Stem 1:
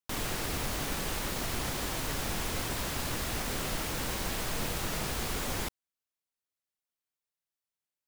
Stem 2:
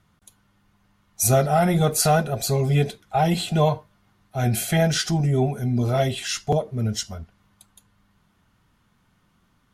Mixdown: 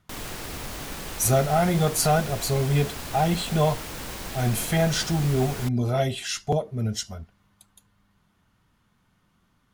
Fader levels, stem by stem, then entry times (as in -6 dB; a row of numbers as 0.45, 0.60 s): -1.5, -2.5 dB; 0.00, 0.00 s